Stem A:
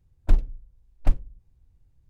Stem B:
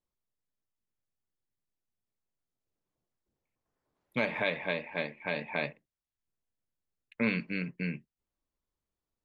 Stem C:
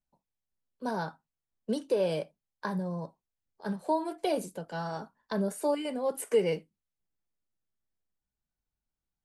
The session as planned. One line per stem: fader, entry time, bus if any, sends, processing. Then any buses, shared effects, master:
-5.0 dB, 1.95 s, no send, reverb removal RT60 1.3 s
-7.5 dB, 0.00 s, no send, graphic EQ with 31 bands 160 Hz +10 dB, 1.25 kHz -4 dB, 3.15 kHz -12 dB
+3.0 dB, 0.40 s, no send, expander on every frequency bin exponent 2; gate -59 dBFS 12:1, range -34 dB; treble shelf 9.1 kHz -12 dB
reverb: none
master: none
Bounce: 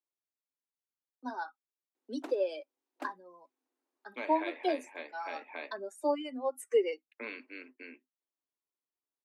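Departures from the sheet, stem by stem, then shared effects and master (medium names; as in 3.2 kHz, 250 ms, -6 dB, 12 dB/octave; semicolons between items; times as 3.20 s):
stem A: missing reverb removal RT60 1.3 s; stem B: missing graphic EQ with 31 bands 160 Hz +10 dB, 1.25 kHz -4 dB, 3.15 kHz -12 dB; master: extra rippled Chebyshev high-pass 250 Hz, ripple 3 dB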